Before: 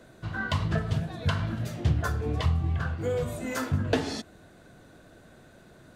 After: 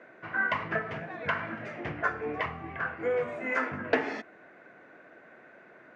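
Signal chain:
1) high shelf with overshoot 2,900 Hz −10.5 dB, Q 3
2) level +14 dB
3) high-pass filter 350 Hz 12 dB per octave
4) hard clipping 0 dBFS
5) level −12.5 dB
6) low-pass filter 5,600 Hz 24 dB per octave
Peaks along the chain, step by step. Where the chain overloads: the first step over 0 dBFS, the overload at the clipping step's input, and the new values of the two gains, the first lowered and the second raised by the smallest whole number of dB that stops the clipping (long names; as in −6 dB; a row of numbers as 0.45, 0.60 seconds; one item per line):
−11.5, +2.5, +4.0, 0.0, −12.5, −12.0 dBFS
step 2, 4.0 dB
step 2 +10 dB, step 5 −8.5 dB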